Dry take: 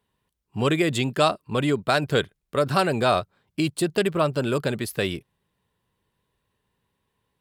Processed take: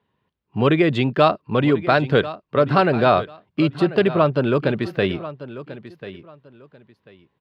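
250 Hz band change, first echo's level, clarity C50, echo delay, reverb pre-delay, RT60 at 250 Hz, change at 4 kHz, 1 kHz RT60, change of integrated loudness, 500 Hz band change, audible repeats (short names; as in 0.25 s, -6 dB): +5.5 dB, -15.0 dB, none, 1.041 s, none, none, -0.5 dB, none, +4.5 dB, +5.5 dB, 2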